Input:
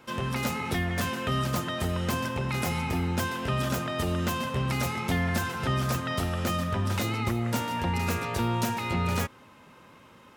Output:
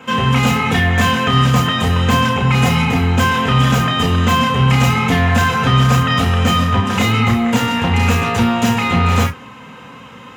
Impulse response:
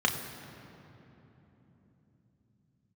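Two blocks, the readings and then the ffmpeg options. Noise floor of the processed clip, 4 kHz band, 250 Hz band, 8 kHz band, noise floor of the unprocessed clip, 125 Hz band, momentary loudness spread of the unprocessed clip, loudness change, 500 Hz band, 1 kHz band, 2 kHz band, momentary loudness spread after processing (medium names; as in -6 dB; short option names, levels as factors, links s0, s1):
-37 dBFS, +16.0 dB, +14.5 dB, +10.0 dB, -53 dBFS, +15.0 dB, 2 LU, +14.5 dB, +11.0 dB, +15.0 dB, +15.0 dB, 3 LU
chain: -filter_complex "[0:a]aeval=exprs='0.158*(cos(1*acos(clip(val(0)/0.158,-1,1)))-cos(1*PI/2))+0.02*(cos(5*acos(clip(val(0)/0.158,-1,1)))-cos(5*PI/2))':c=same[s0];[1:a]atrim=start_sample=2205,atrim=end_sample=3528[s1];[s0][s1]afir=irnorm=-1:irlink=0,volume=1.19"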